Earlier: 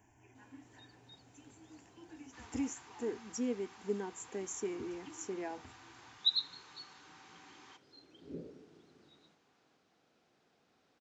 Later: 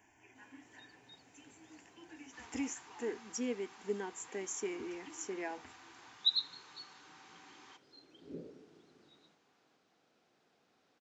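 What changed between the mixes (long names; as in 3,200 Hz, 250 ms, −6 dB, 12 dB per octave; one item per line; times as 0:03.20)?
speech: add octave-band graphic EQ 125/2,000/4,000 Hz −6/+6/+5 dB
master: add low-shelf EQ 100 Hz −9.5 dB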